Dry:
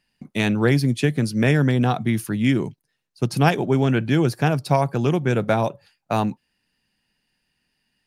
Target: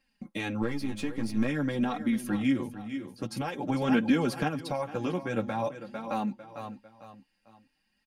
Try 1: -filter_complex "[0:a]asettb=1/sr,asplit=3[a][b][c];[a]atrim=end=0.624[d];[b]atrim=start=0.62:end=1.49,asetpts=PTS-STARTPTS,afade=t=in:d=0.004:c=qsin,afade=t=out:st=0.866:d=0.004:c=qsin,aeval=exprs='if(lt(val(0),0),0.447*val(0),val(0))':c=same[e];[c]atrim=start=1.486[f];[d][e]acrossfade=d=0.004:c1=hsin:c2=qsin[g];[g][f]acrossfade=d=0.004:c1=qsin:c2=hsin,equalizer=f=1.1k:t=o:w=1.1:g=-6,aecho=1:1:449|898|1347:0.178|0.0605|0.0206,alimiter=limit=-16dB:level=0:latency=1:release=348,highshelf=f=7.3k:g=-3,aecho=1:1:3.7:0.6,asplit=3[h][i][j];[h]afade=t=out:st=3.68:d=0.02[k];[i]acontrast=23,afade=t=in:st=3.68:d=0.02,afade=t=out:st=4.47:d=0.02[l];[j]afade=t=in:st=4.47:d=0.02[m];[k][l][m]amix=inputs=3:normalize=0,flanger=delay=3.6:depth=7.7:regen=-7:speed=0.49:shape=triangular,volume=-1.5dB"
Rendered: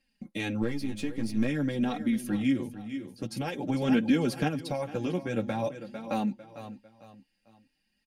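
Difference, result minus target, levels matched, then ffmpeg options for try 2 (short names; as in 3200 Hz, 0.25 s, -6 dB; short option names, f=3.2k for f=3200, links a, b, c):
1000 Hz band -3.0 dB
-filter_complex "[0:a]asettb=1/sr,asplit=3[a][b][c];[a]atrim=end=0.624[d];[b]atrim=start=0.62:end=1.49,asetpts=PTS-STARTPTS,afade=t=in:d=0.004:c=qsin,afade=t=out:st=0.866:d=0.004:c=qsin,aeval=exprs='if(lt(val(0),0),0.447*val(0),val(0))':c=same[e];[c]atrim=start=1.486[f];[d][e]acrossfade=d=0.004:c1=hsin:c2=qsin[g];[g][f]acrossfade=d=0.004:c1=qsin:c2=hsin,equalizer=f=1.1k:t=o:w=1.1:g=2.5,aecho=1:1:449|898|1347:0.178|0.0605|0.0206,alimiter=limit=-16dB:level=0:latency=1:release=348,highshelf=f=7.3k:g=-3,aecho=1:1:3.7:0.6,asplit=3[h][i][j];[h]afade=t=out:st=3.68:d=0.02[k];[i]acontrast=23,afade=t=in:st=3.68:d=0.02,afade=t=out:st=4.47:d=0.02[l];[j]afade=t=in:st=4.47:d=0.02[m];[k][l][m]amix=inputs=3:normalize=0,flanger=delay=3.6:depth=7.7:regen=-7:speed=0.49:shape=triangular,volume=-1.5dB"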